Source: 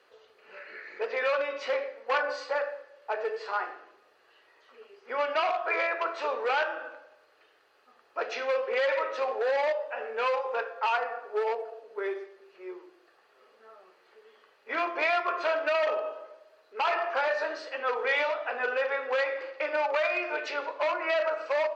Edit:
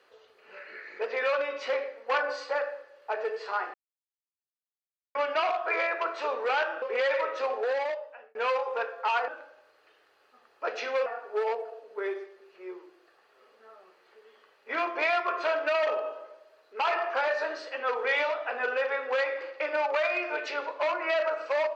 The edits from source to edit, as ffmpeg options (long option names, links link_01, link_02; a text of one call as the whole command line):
ffmpeg -i in.wav -filter_complex "[0:a]asplit=7[link_01][link_02][link_03][link_04][link_05][link_06][link_07];[link_01]atrim=end=3.74,asetpts=PTS-STARTPTS,afade=type=out:start_time=3.736:duration=0.004:curve=hsin[link_08];[link_02]atrim=start=3.74:end=5.15,asetpts=PTS-STARTPTS,volume=0[link_09];[link_03]atrim=start=5.15:end=6.822,asetpts=PTS-STARTPTS,afade=type=in:duration=0.004:curve=hsin[link_10];[link_04]atrim=start=8.598:end=10.13,asetpts=PTS-STARTPTS,afade=type=out:start_time=0.772:duration=0.76[link_11];[link_05]atrim=start=10.13:end=11.062,asetpts=PTS-STARTPTS,afade=type=in:duration=0.004:curve=hsin[link_12];[link_06]atrim=start=6.818:end=8.602[link_13];[link_07]atrim=start=11.058[link_14];[link_08][link_09][link_10]concat=n=3:v=0:a=1[link_15];[link_11][link_12]concat=n=2:v=0:a=1[link_16];[link_15][link_16]acrossfade=duration=0.004:curve1=hsin:curve2=hsin[link_17];[link_17][link_13]acrossfade=duration=0.004:curve1=hsin:curve2=hsin[link_18];[link_18][link_14]acrossfade=duration=0.004:curve1=hsin:curve2=hsin" out.wav